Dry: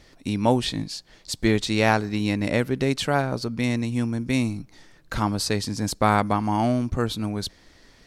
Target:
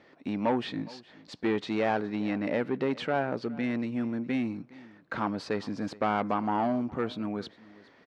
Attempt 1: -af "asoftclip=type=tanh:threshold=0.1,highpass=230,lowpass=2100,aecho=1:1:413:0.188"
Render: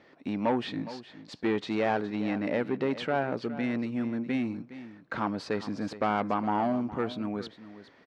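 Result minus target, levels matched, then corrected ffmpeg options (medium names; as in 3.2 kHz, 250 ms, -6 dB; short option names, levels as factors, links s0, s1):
echo-to-direct +6.5 dB
-af "asoftclip=type=tanh:threshold=0.1,highpass=230,lowpass=2100,aecho=1:1:413:0.0891"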